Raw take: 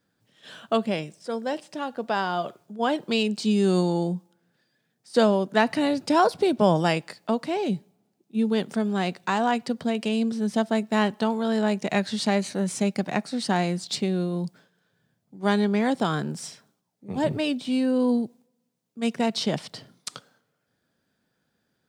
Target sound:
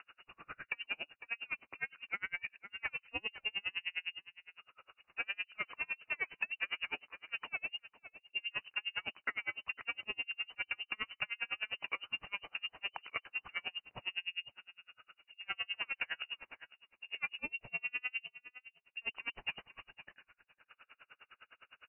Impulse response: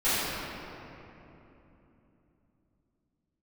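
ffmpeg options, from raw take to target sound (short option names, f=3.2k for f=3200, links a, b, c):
-filter_complex "[0:a]acompressor=mode=upward:threshold=-36dB:ratio=2.5,asoftclip=type=tanh:threshold=-23.5dB,lowshelf=f=400:g=-9.5,lowpass=f=2.6k:t=q:w=0.5098,lowpass=f=2.6k:t=q:w=0.6013,lowpass=f=2.6k:t=q:w=0.9,lowpass=f=2.6k:t=q:w=2.563,afreqshift=-3000,asplit=2[a][b];[b]adelay=502,lowpass=f=2k:p=1,volume=-16dB,asplit=2[c][d];[d]adelay=502,lowpass=f=2k:p=1,volume=0.19[e];[a][c][e]amix=inputs=3:normalize=0,acompressor=threshold=-36dB:ratio=3,aeval=exprs='val(0)*pow(10,-38*(0.5-0.5*cos(2*PI*9.8*n/s))/20)':c=same,volume=4dB"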